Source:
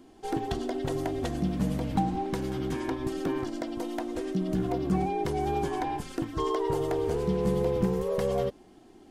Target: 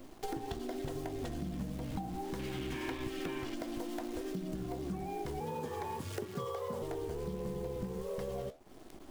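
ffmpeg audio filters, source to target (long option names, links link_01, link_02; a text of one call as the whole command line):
ffmpeg -i in.wav -filter_complex "[0:a]lowshelf=frequency=60:gain=6.5,asettb=1/sr,asplit=3[link_01][link_02][link_03];[link_01]atrim=end=5.404[link_04];[link_02]atrim=start=5.4:end=6.82,asetpts=PTS-STARTPTS,afade=type=in:duration=0.004:curve=qsin,afade=type=out:start_time=1.416:duration=0.004:curve=qsin,afreqshift=85[link_05];[link_03]atrim=start=6.816[link_06];[link_04][link_05]acrossfade=duration=0.004:curve1=hsin:curve2=qsin[link_07];[link_07][link_06]acrossfade=duration=0.004:curve1=qsin:curve2=hsin,acrusher=bits=8:dc=4:mix=0:aa=0.000001,flanger=delay=7.1:depth=9.9:regen=-68:speed=1.6:shape=triangular,acompressor=threshold=-45dB:ratio=8,asettb=1/sr,asplit=3[link_08][link_09][link_10];[link_08]atrim=end=2.394[link_11];[link_09]atrim=start=2.39:end=3.55,asetpts=PTS-STARTPTS,afade=type=in:duration=0.004:curve=qsin,afade=type=out:start_time=1.156:duration=0.004:curve=qsin,equalizer=frequency=2500:width_type=o:width=1.2:gain=10.5[link_12];[link_10]atrim=start=3.546[link_13];[link_11][link_12]acrossfade=duration=0.004:curve1=hsin:curve2=qsin[link_14];[link_14][link_13]acrossfade=duration=0.004:curve1=qsin:curve2=hsin,volume=8.5dB" out.wav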